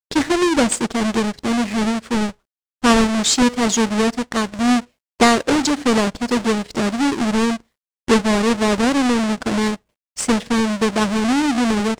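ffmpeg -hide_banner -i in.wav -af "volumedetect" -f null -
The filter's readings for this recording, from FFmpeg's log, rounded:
mean_volume: -18.4 dB
max_volume: -2.1 dB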